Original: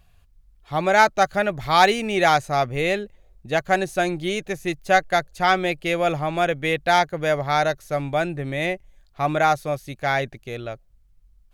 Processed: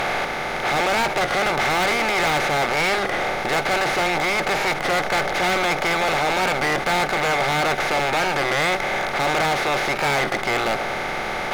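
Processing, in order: spectral levelling over time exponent 0.2; peaking EQ 2.1 kHz +8 dB 0.33 oct; on a send at -13.5 dB: reverberation RT60 0.35 s, pre-delay 4 ms; on the sum: hard clipper -12 dBFS, distortion -6 dB; warped record 33 1/3 rpm, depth 100 cents; trim -5.5 dB

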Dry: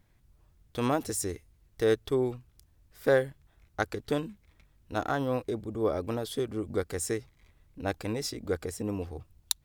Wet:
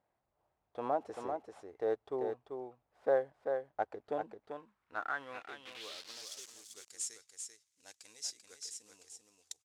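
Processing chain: CVSD coder 64 kbps; 5.65–6.52 s: word length cut 6-bit, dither none; delay 390 ms -5.5 dB; band-pass sweep 720 Hz -> 6.8 kHz, 4.38–6.47 s

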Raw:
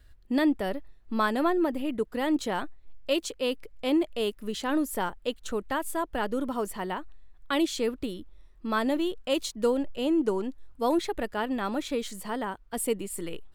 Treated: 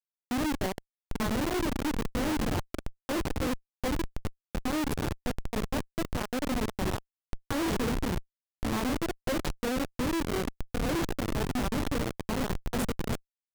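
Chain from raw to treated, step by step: in parallel at -6 dB: overload inside the chain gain 24 dB; on the sum: hum notches 50/100/150/200 Hz; delay 1106 ms -10.5 dB; peak limiter -22 dBFS, peak gain reduction 9.5 dB; 3.89–4.66 s: compression 10:1, threshold -30 dBFS, peak gain reduction 6.5 dB; 9.76–10.29 s: low-pass 2 kHz; on a send at -8 dB: tilt EQ -3.5 dB/octave + reverberation RT60 0.45 s, pre-delay 3 ms; 7.56–8.11 s: on the sum: modulation noise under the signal 14 dB; Schmitt trigger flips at -26 dBFS

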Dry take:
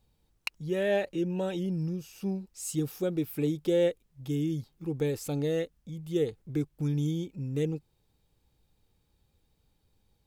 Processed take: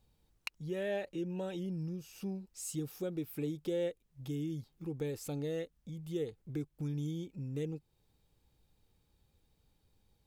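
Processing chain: compression 1.5:1, threshold -44 dBFS, peak gain reduction 8 dB; trim -1.5 dB

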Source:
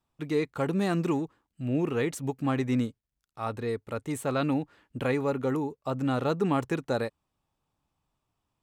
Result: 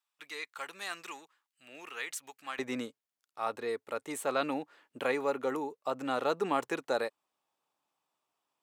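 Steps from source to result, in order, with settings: high-pass 1.5 kHz 12 dB/octave, from 2.59 s 450 Hz

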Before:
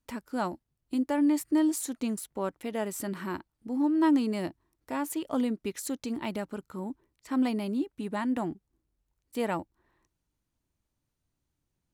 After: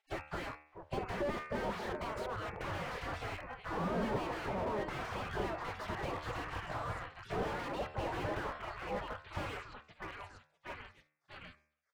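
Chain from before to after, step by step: on a send: repeats whose band climbs or falls 642 ms, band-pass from 300 Hz, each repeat 0.7 oct, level -6 dB; on the sum: spectral gate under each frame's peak -30 dB weak; peaking EQ 92 Hz +8 dB 0.31 oct; de-hum 75.66 Hz, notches 36; in parallel at +2 dB: gain riding within 5 dB 0.5 s; on the sum: low-pass 1.9 kHz 12 dB/octave; slew-rate limiter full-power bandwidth 2.2 Hz; trim +16 dB

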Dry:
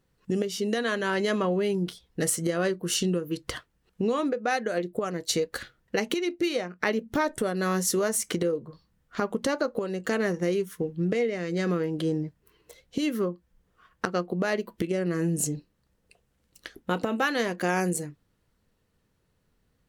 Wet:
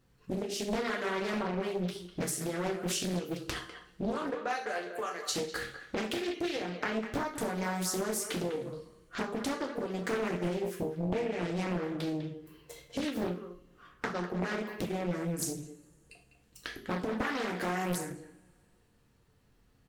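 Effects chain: 4.11–5.27 s: high-pass 330 Hz -> 900 Hz 12 dB/octave; compression 5:1, threshold -34 dBFS, peak gain reduction 12.5 dB; speakerphone echo 200 ms, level -9 dB; two-slope reverb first 0.4 s, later 2.3 s, from -27 dB, DRR -1 dB; loudspeaker Doppler distortion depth 0.92 ms

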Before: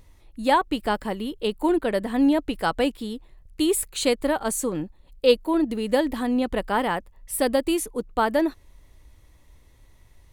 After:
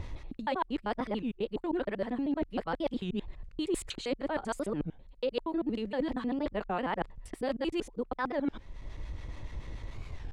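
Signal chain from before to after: time reversed locally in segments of 78 ms; distance through air 140 m; in parallel at 0 dB: upward compressor, threshold -25 dBFS; on the sum: harmonic tremolo 7 Hz, depth 50%, crossover 760 Hz; reverse; compression 5:1, threshold -31 dBFS, peak gain reduction 18.5 dB; reverse; warped record 33 1/3 rpm, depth 250 cents

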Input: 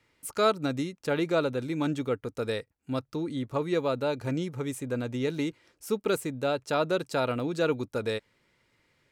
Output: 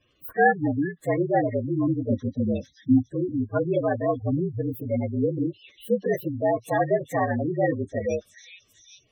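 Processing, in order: frequency axis rescaled in octaves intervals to 116%; 2.10–3.09 s: graphic EQ 125/250/500/1000/2000/4000/8000 Hz +5/+11/-8/+5/-6/+7/-3 dB; repeats whose band climbs or falls 399 ms, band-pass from 2.6 kHz, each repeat 0.7 oct, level -9 dB; spectral gate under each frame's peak -15 dB strong; trim +7 dB

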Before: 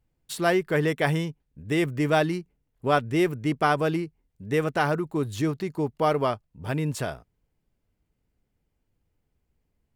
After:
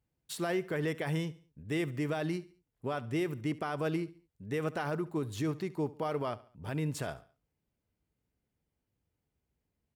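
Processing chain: high-pass 59 Hz; peak limiter -18.5 dBFS, peak gain reduction 10.5 dB; feedback delay 70 ms, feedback 41%, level -19 dB; trim -6 dB

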